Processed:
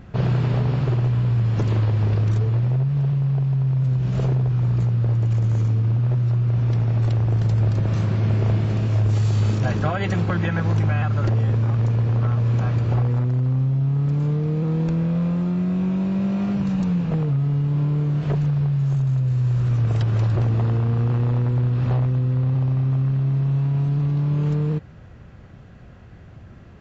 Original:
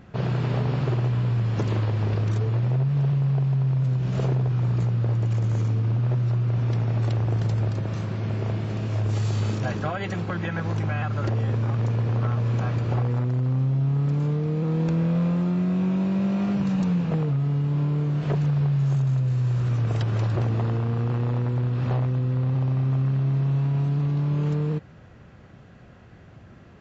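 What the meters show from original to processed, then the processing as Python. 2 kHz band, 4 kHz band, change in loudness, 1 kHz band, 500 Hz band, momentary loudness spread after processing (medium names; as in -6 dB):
+2.0 dB, no reading, +3.5 dB, +1.0 dB, +1.0 dB, 2 LU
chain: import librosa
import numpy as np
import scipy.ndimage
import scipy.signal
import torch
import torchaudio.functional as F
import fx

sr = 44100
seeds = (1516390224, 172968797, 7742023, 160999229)

y = fx.rider(x, sr, range_db=10, speed_s=0.5)
y = fx.low_shelf(y, sr, hz=82.0, db=12.0)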